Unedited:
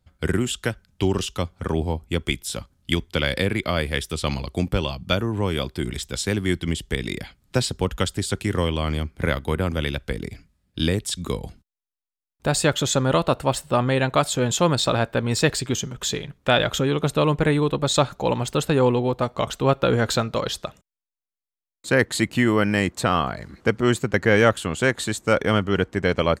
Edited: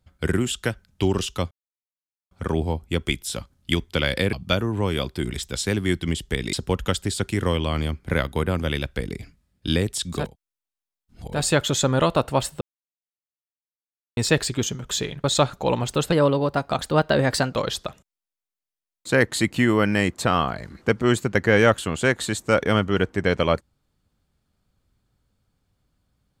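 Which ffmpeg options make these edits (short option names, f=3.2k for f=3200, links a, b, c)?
-filter_complex "[0:a]asplit=11[a][b][c][d][e][f][g][h][i][j][k];[a]atrim=end=1.51,asetpts=PTS-STARTPTS,afade=t=out:st=1.506:d=0.004:c=hsin,apad=pad_dur=0.8[l];[b]atrim=start=1.51:end=3.532,asetpts=PTS-STARTPTS,afade=t=in:d=0.004:c=hsin[m];[c]atrim=start=4.928:end=7.132[n];[d]atrim=start=7.648:end=11.48[o];[e]atrim=start=11.24:end=12.59,asetpts=PTS-STARTPTS,areverse[p];[f]atrim=start=12.35:end=13.73,asetpts=PTS-STARTPTS,afade=t=out:st=1.376:d=0.004:c=hsin[q];[g]atrim=start=13.73:end=15.29,asetpts=PTS-STARTPTS,volume=0[r];[h]atrim=start=15.29:end=16.362,asetpts=PTS-STARTPTS,afade=t=in:d=0.004:c=hsin[s];[i]atrim=start=17.828:end=18.714[t];[j]atrim=start=18.71:end=20.32,asetpts=PTS-STARTPTS,asetrate=50274,aresample=44100[u];[k]atrim=start=20.316[v];[l][m]concat=n=2:v=0:a=1[w];[w][n]acrossfade=d=0.004:c1=hsin:c2=hsin[x];[x][o]acrossfade=d=0.004:c1=hsin:c2=hsin[y];[y][p]acrossfade=d=0.24:c1=tri:c2=tri[z];[q][r][s]concat=n=3:v=0:a=1[aa];[z][aa]acrossfade=d=0.24:c1=tri:c2=tri[ab];[ab][t]acrossfade=d=0.004:c1=hsin:c2=hsin[ac];[ac][u]acrossfade=d=0.004:c1=hsin:c2=hsin[ad];[ad][v]acrossfade=d=0.004:c1=hsin:c2=hsin"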